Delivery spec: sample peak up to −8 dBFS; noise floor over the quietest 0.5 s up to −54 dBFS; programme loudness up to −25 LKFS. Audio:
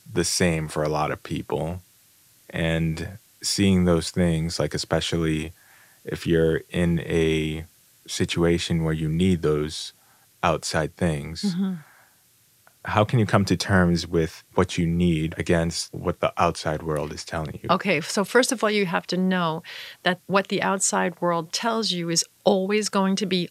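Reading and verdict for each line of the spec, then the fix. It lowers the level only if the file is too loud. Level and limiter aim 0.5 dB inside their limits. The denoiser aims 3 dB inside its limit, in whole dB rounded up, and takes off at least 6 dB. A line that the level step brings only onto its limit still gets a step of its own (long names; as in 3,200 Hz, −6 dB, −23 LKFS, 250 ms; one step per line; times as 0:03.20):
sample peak −4.0 dBFS: out of spec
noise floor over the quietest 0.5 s −60 dBFS: in spec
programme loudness −23.5 LKFS: out of spec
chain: level −2 dB
brickwall limiter −8.5 dBFS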